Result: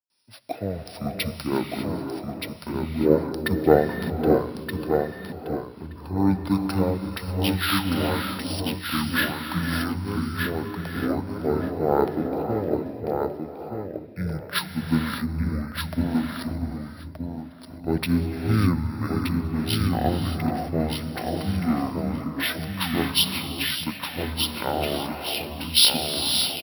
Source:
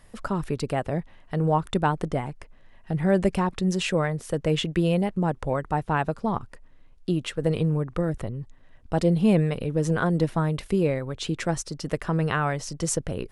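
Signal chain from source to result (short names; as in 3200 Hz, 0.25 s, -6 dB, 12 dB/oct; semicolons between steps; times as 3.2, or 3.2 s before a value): HPF 270 Hz 12 dB/oct; gate with hold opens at -51 dBFS; high shelf 3300 Hz +11.5 dB; vocal rider within 3 dB 2 s; feedback echo 0.612 s, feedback 18%, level -3.5 dB; non-linear reverb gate 0.32 s rising, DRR 2.5 dB; speed mistake 15 ips tape played at 7.5 ips; careless resampling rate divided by 3×, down filtered, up hold; three-band expander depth 70%; gain -2.5 dB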